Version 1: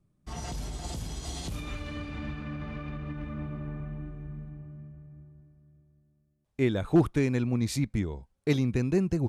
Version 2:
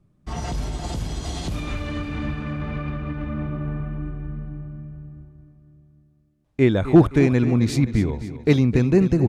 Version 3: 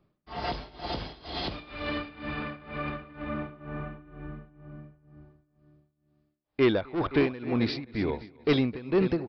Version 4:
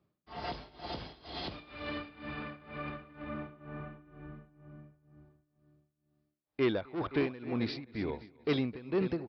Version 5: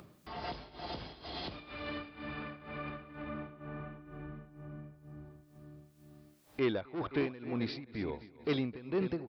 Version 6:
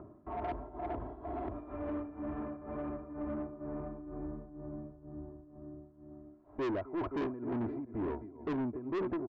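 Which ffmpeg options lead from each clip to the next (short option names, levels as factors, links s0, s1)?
-filter_complex "[0:a]aemphasis=mode=reproduction:type=cd,asplit=2[s0][s1];[s1]aecho=0:1:261|522|783|1044|1305:0.224|0.112|0.056|0.028|0.014[s2];[s0][s2]amix=inputs=2:normalize=0,volume=2.66"
-af "bass=f=250:g=-14,treble=f=4000:g=1,aresample=11025,asoftclip=type=tanh:threshold=0.126,aresample=44100,tremolo=f=2.1:d=0.88,volume=1.41"
-af "highpass=56,volume=0.473"
-af "acompressor=mode=upward:threshold=0.0158:ratio=2.5,volume=0.794"
-af "lowpass=f=1100:w=0.5412,lowpass=f=1100:w=1.3066,aecho=1:1:3:0.65,aresample=16000,asoftclip=type=tanh:threshold=0.015,aresample=44100,volume=1.78"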